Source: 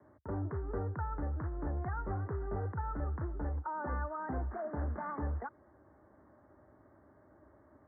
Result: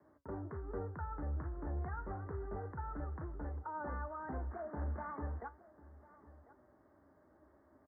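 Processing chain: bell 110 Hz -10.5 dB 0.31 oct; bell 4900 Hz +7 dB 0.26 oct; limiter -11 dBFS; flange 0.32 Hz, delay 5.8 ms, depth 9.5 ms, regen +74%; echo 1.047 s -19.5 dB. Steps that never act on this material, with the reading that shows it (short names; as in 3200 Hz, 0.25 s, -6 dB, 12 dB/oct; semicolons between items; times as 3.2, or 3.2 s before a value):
bell 4900 Hz: input band ends at 1500 Hz; limiter -11 dBFS: input peak -25.0 dBFS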